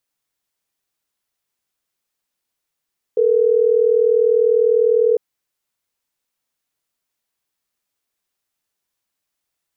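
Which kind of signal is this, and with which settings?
call progress tone ringback tone, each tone -14.5 dBFS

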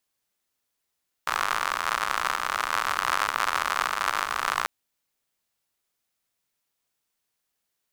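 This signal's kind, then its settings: rain from filtered ticks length 3.39 s, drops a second 100, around 1.2 kHz, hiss -23 dB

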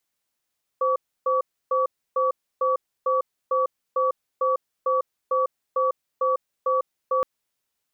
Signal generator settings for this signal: cadence 519 Hz, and 1.14 kHz, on 0.15 s, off 0.30 s, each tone -21.5 dBFS 6.42 s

